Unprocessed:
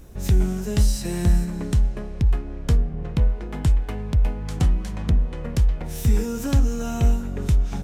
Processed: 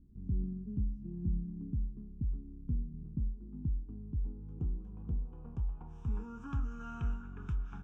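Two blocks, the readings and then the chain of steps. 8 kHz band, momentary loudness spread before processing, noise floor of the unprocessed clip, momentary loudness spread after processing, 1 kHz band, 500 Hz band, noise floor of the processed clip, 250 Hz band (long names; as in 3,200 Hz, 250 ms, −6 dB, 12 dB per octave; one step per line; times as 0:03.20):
below −35 dB, 3 LU, −32 dBFS, 5 LU, −16.0 dB, −24.0 dB, −49 dBFS, −14.5 dB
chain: first-order pre-emphasis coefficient 0.8
low-pass filter sweep 260 Hz → 1,500 Hz, 0:03.77–0:06.81
phaser with its sweep stopped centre 2,900 Hz, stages 8
level −2.5 dB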